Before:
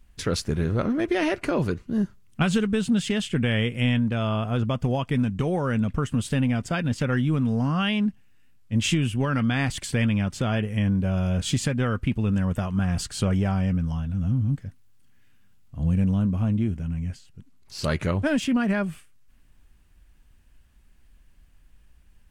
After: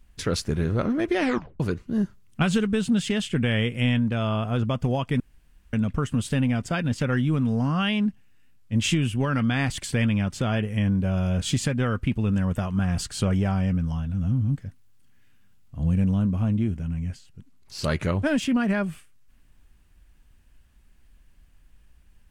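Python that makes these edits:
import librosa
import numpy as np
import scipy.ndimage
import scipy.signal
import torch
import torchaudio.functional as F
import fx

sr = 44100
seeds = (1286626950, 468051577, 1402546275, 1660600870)

y = fx.edit(x, sr, fx.tape_stop(start_s=1.21, length_s=0.39),
    fx.room_tone_fill(start_s=5.2, length_s=0.53), tone=tone)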